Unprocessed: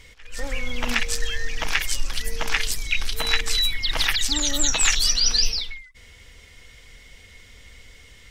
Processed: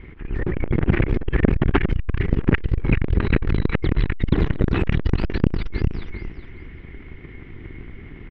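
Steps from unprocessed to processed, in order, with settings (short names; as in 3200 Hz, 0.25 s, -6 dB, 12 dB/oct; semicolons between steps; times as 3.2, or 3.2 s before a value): cycle switcher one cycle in 2, inverted; LPF 2200 Hz 24 dB/oct; resonant low shelf 450 Hz +6 dB, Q 3; feedback echo 0.405 s, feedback 20%, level -4.5 dB; core saturation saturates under 270 Hz; gain +3.5 dB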